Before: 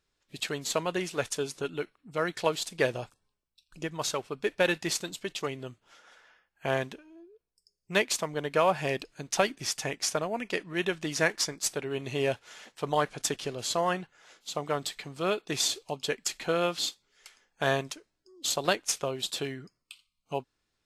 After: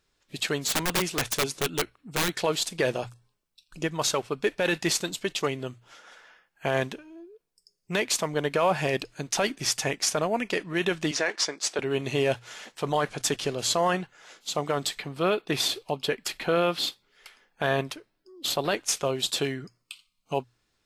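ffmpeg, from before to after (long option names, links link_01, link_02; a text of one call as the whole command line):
ffmpeg -i in.wav -filter_complex "[0:a]asplit=3[link_01][link_02][link_03];[link_01]afade=type=out:start_time=0.67:duration=0.02[link_04];[link_02]aeval=exprs='(mod(17.8*val(0)+1,2)-1)/17.8':channel_layout=same,afade=type=in:start_time=0.67:duration=0.02,afade=type=out:start_time=2.38:duration=0.02[link_05];[link_03]afade=type=in:start_time=2.38:duration=0.02[link_06];[link_04][link_05][link_06]amix=inputs=3:normalize=0,asettb=1/sr,asplit=3[link_07][link_08][link_09];[link_07]atrim=end=11.114[link_10];[link_08]atrim=start=11.11:end=11.79,asetpts=PTS-STARTPTS,afade=type=in:duration=0.004:curve=qsin,afade=type=out:start_time=0.676:duration=0.004:curve=qsin,highpass=350,lowpass=6100[link_11];[link_09]atrim=start=11.786[link_12];[link_10][link_11]acrossfade=duration=0.004:curve1=hsin:curve2=qsin[link_13];[link_13][link_12]acrossfade=duration=0.004:curve1=qsin:curve2=hsin,asettb=1/sr,asplit=3[link_14][link_15][link_16];[link_14]atrim=end=14.994[link_17];[link_15]atrim=start=14.99:end=18.76,asetpts=PTS-STARTPTS,afade=type=in:duration=0.004:curve=qsin,afade=type=out:start_time=3.766:duration=0.004:curve=qsin,equalizer=frequency=6900:width=1.4:gain=-11[link_18];[link_16]atrim=start=18.756[link_19];[link_17][link_18]acrossfade=duration=0.004:curve1=hsin:curve2=qsin[link_20];[link_20][link_19]acrossfade=duration=0.004:curve1=qsin:curve2=hsin,bandreject=frequency=60:width_type=h:width=6,bandreject=frequency=120:width_type=h:width=6,acontrast=49,alimiter=limit=-14.5dB:level=0:latency=1:release=14" out.wav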